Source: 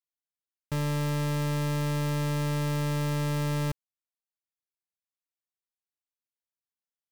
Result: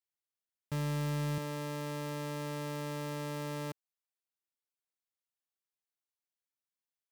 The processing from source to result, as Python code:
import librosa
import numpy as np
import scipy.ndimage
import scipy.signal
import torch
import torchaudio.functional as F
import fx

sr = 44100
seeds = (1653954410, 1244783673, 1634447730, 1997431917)

y = fx.highpass(x, sr, hz=fx.steps((0.0, 48.0), (1.38, 240.0)), slope=12)
y = 10.0 ** (-25.5 / 20.0) * np.tanh(y / 10.0 ** (-25.5 / 20.0))
y = F.gain(torch.from_numpy(y), -3.0).numpy()